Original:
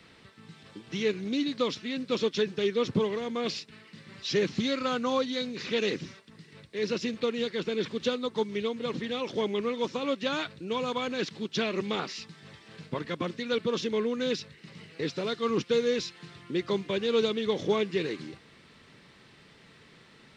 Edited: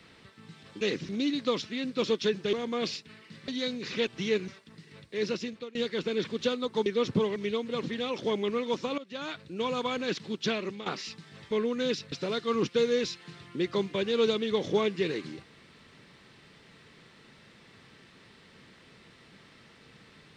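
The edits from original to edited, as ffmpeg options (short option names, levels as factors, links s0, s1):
-filter_complex "[0:a]asplit=14[s0][s1][s2][s3][s4][s5][s6][s7][s8][s9][s10][s11][s12][s13];[s0]atrim=end=0.812[s14];[s1]atrim=start=5.808:end=6.092[s15];[s2]atrim=start=1.218:end=2.662[s16];[s3]atrim=start=3.158:end=4.112[s17];[s4]atrim=start=5.218:end=5.812[s18];[s5]atrim=start=0.808:end=1.222[s19];[s6]atrim=start=6.088:end=7.36,asetpts=PTS-STARTPTS,afade=t=out:st=0.762:d=0.51:silence=0.0668344[s20];[s7]atrim=start=7.36:end=8.472,asetpts=PTS-STARTPTS,afade=t=in:d=0.004:c=hsin:silence=0.0668344[s21];[s8]atrim=start=2.658:end=3.162[s22];[s9]atrim=start=8.468:end=10.09,asetpts=PTS-STARTPTS,afade=t=out:st=1.618:d=0.004:c=hsin:silence=0.11885[s23];[s10]atrim=start=10.09:end=11.97,asetpts=PTS-STARTPTS,afade=t=in:d=0.64:silence=0.11885,afade=t=out:st=1.5:d=0.38:silence=0.211349[s24];[s11]atrim=start=11.97:end=12.622,asetpts=PTS-STARTPTS,afade=t=in:d=0.004:c=hsin:silence=0.211349[s25];[s12]atrim=start=13.918:end=14.532[s26];[s13]atrim=start=15.068[s27];[s14][s15]acrossfade=d=0.004:c1=hsin:c2=hsin[s28];[s28][s16]acrossfade=d=0.004:c1=hsin:c2=hsin[s29];[s29][s17]acrossfade=d=0.004:c1=hsin:c2=hsin[s30];[s30][s18]acrossfade=d=0.004:c1=hsin:c2=hsin[s31];[s31][s19]acrossfade=d=0.004:c1=hsin:c2=hsin[s32];[s20][s21]concat=n=2:v=0:a=1[s33];[s32][s33]acrossfade=d=0.004:c1=hsin:c2=hsin[s34];[s34][s22]acrossfade=d=0.004:c1=hsin:c2=hsin[s35];[s23][s24][s25]concat=n=3:v=0:a=1[s36];[s35][s36]acrossfade=d=0.004:c1=hsin:c2=hsin[s37];[s37][s26]acrossfade=d=0.004:c1=hsin:c2=hsin[s38];[s38][s27]acrossfade=d=0.004:c1=hsin:c2=hsin"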